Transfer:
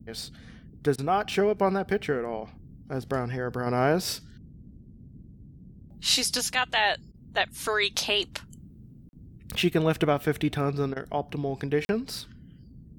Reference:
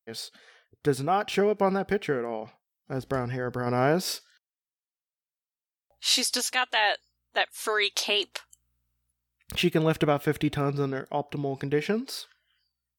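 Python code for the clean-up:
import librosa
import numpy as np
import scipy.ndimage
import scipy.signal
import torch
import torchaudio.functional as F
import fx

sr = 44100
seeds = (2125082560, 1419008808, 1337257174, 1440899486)

y = fx.fix_interpolate(x, sr, at_s=(9.09, 11.85), length_ms=41.0)
y = fx.fix_interpolate(y, sr, at_s=(0.96, 7.12, 10.94), length_ms=22.0)
y = fx.noise_reduce(y, sr, print_start_s=12.25, print_end_s=12.75, reduce_db=30.0)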